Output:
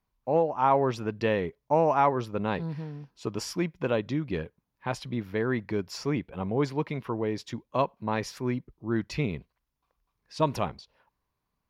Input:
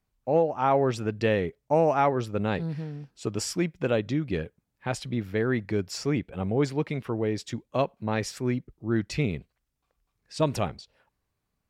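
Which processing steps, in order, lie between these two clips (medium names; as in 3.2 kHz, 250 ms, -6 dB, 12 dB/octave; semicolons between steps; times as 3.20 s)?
graphic EQ with 31 bands 100 Hz -4 dB, 1 kHz +9 dB, 8 kHz -11 dB; trim -2 dB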